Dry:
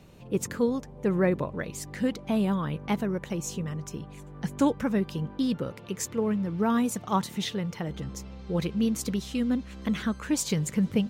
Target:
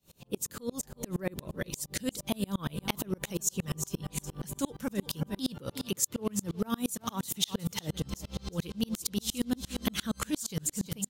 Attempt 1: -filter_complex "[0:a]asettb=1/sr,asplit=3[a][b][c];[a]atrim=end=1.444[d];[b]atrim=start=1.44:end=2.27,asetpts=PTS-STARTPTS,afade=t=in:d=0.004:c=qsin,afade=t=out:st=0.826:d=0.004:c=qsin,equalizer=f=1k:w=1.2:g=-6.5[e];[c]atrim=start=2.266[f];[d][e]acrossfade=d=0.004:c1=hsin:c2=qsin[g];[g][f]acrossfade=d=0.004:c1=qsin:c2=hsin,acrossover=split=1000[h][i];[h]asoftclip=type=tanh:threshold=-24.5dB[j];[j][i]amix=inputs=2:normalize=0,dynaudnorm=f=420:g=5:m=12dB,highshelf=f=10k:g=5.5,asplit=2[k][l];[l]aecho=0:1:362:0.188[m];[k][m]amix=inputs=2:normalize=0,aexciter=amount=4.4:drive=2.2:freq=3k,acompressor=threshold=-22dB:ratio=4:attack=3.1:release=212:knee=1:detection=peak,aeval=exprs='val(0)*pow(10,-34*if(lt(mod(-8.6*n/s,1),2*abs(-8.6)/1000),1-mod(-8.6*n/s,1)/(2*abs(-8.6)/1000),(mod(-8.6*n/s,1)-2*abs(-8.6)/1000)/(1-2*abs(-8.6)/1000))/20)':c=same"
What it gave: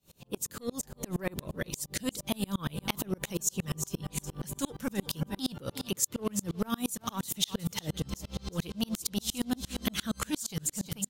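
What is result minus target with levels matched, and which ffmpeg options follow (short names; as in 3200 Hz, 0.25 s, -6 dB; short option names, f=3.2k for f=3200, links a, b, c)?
soft clip: distortion +11 dB
-filter_complex "[0:a]asettb=1/sr,asplit=3[a][b][c];[a]atrim=end=1.444[d];[b]atrim=start=1.44:end=2.27,asetpts=PTS-STARTPTS,afade=t=in:d=0.004:c=qsin,afade=t=out:st=0.826:d=0.004:c=qsin,equalizer=f=1k:w=1.2:g=-6.5[e];[c]atrim=start=2.266[f];[d][e]acrossfade=d=0.004:c1=hsin:c2=qsin[g];[g][f]acrossfade=d=0.004:c1=qsin:c2=hsin,acrossover=split=1000[h][i];[h]asoftclip=type=tanh:threshold=-16dB[j];[j][i]amix=inputs=2:normalize=0,dynaudnorm=f=420:g=5:m=12dB,highshelf=f=10k:g=5.5,asplit=2[k][l];[l]aecho=0:1:362:0.188[m];[k][m]amix=inputs=2:normalize=0,aexciter=amount=4.4:drive=2.2:freq=3k,acompressor=threshold=-22dB:ratio=4:attack=3.1:release=212:knee=1:detection=peak,aeval=exprs='val(0)*pow(10,-34*if(lt(mod(-8.6*n/s,1),2*abs(-8.6)/1000),1-mod(-8.6*n/s,1)/(2*abs(-8.6)/1000),(mod(-8.6*n/s,1)-2*abs(-8.6)/1000)/(1-2*abs(-8.6)/1000))/20)':c=same"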